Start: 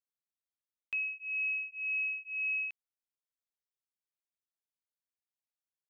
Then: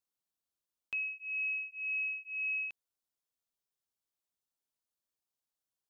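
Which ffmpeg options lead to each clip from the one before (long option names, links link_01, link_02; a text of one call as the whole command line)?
ffmpeg -i in.wav -af "equalizer=frequency=2100:width_type=o:width=0.77:gain=-8,volume=3.5dB" out.wav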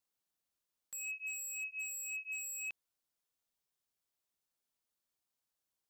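ffmpeg -i in.wav -af "aeval=exprs='0.0119*(abs(mod(val(0)/0.0119+3,4)-2)-1)':channel_layout=same,volume=2dB" out.wav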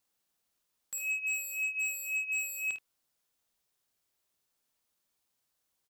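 ffmpeg -i in.wav -af "aecho=1:1:52|77:0.376|0.2,volume=7dB" out.wav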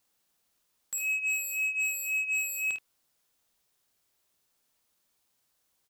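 ffmpeg -i in.wav -af "asoftclip=type=tanh:threshold=-29.5dB,volume=5.5dB" out.wav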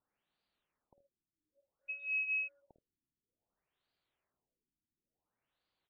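ffmpeg -i in.wav -af "afftfilt=real='re*lt(b*sr/1024,350*pow(5000/350,0.5+0.5*sin(2*PI*0.57*pts/sr)))':imag='im*lt(b*sr/1024,350*pow(5000/350,0.5+0.5*sin(2*PI*0.57*pts/sr)))':win_size=1024:overlap=0.75,volume=-5dB" out.wav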